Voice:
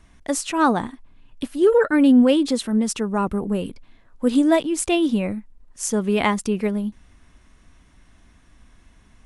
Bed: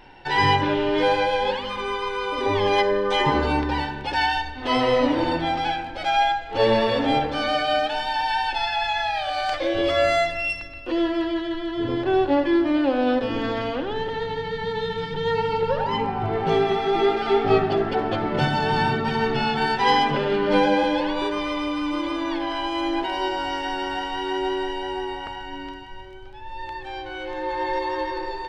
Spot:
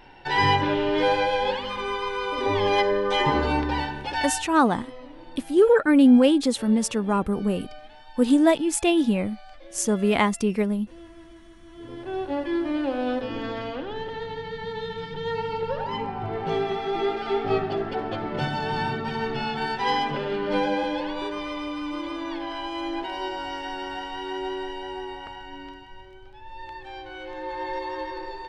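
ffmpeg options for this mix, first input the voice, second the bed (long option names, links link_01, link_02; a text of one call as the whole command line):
ffmpeg -i stem1.wav -i stem2.wav -filter_complex "[0:a]adelay=3950,volume=-1dB[link_01];[1:a]volume=16.5dB,afade=type=out:start_time=3.95:duration=0.73:silence=0.0794328,afade=type=in:start_time=11.62:duration=1.05:silence=0.125893[link_02];[link_01][link_02]amix=inputs=2:normalize=0" out.wav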